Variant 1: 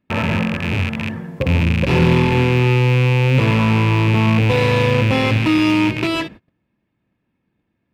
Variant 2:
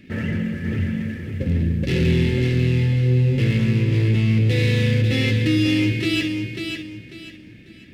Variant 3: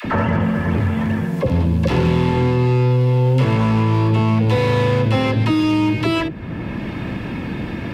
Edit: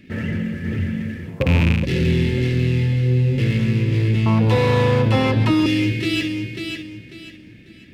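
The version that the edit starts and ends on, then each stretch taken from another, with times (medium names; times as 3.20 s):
2
1.31–1.80 s: from 1, crossfade 0.16 s
4.26–5.66 s: from 3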